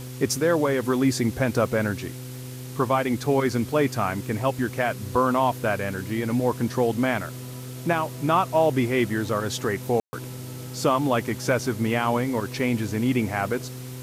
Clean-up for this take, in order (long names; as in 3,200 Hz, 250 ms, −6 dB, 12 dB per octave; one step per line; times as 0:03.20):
click removal
hum removal 126.9 Hz, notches 4
ambience match 0:10.00–0:10.13
noise reduction from a noise print 30 dB